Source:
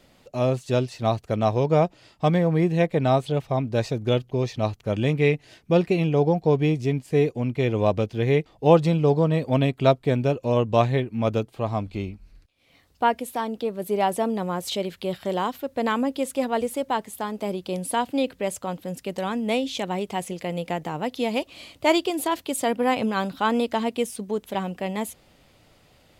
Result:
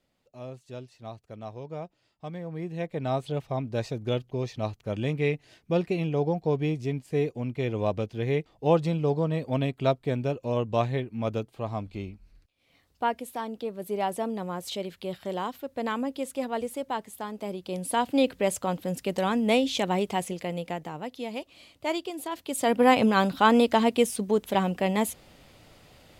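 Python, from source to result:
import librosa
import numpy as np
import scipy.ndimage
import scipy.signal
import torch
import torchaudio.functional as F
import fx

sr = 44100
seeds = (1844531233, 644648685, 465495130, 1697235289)

y = fx.gain(x, sr, db=fx.line((2.27, -18.0), (3.29, -6.0), (17.59, -6.0), (18.23, 1.5), (20.02, 1.5), (21.18, -9.5), (22.3, -9.5), (22.81, 3.0)))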